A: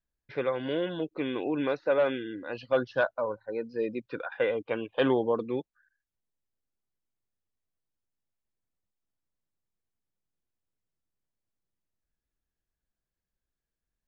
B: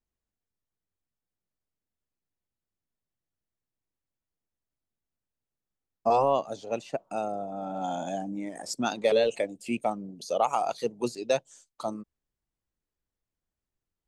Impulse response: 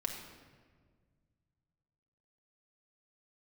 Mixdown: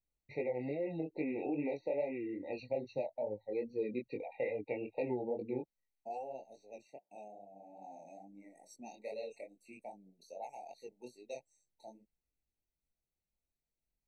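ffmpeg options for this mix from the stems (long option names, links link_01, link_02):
-filter_complex "[0:a]acompressor=threshold=-29dB:ratio=6,volume=-0.5dB,asplit=3[link_01][link_02][link_03];[link_01]atrim=end=6.84,asetpts=PTS-STARTPTS,afade=type=out:start_time=6.836:duration=0.004:curve=hsin[link_04];[link_02]atrim=start=6.84:end=8.28,asetpts=PTS-STARTPTS,volume=0[link_05];[link_03]atrim=start=8.28,asetpts=PTS-STARTPTS,afade=type=in:duration=0.004:curve=hsin[link_06];[link_04][link_05][link_06]concat=n=3:v=0:a=1[link_07];[1:a]highpass=frequency=310:poles=1,volume=-15.5dB[link_08];[link_07][link_08]amix=inputs=2:normalize=0,flanger=delay=19:depth=5.3:speed=2.4,afftfilt=real='re*eq(mod(floor(b*sr/1024/930),2),0)':imag='im*eq(mod(floor(b*sr/1024/930),2),0)':win_size=1024:overlap=0.75"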